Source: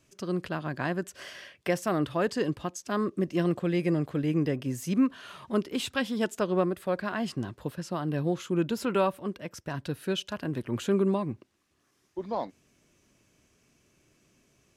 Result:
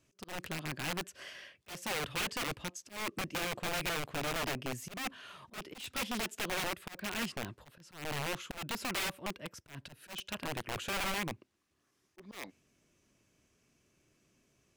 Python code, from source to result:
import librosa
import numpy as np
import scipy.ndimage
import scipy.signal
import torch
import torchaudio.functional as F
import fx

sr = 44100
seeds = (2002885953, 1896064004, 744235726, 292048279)

y = (np.mod(10.0 ** (25.0 / 20.0) * x + 1.0, 2.0) - 1.0) / 10.0 ** (25.0 / 20.0)
y = fx.dynamic_eq(y, sr, hz=2500.0, q=1.7, threshold_db=-49.0, ratio=4.0, max_db=5)
y = fx.auto_swell(y, sr, attack_ms=184.0)
y = F.gain(torch.from_numpy(y), -6.0).numpy()